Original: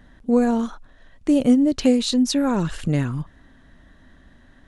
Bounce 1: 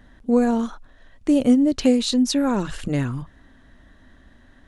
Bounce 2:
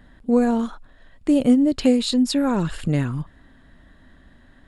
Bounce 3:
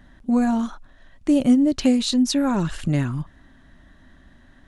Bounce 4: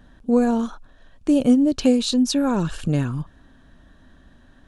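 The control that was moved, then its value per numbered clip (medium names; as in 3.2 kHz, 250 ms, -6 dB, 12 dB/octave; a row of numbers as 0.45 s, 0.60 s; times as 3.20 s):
band-stop, frequency: 160 Hz, 6 kHz, 470 Hz, 2 kHz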